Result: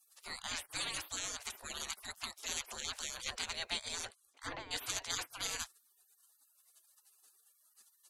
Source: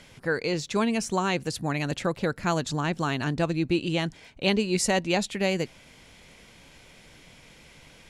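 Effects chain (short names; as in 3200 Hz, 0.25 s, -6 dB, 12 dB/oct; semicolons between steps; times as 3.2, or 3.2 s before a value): spectral gate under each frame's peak -30 dB weak; 4.05–4.71 treble ducked by the level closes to 1600 Hz, closed at -43 dBFS; gain +7.5 dB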